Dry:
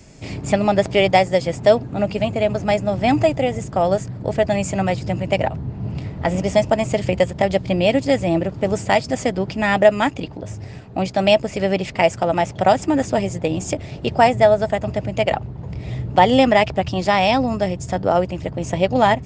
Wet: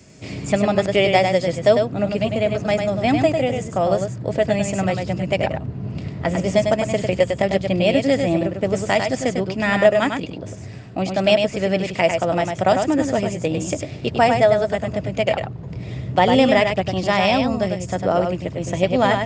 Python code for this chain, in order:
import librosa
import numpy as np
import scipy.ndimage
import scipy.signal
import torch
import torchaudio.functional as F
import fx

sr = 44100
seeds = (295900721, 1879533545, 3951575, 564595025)

p1 = scipy.signal.sosfilt(scipy.signal.butter(2, 84.0, 'highpass', fs=sr, output='sos'), x)
p2 = fx.peak_eq(p1, sr, hz=850.0, db=-6.5, octaves=0.25)
p3 = p2 + fx.echo_single(p2, sr, ms=100, db=-5.5, dry=0)
y = F.gain(torch.from_numpy(p3), -1.0).numpy()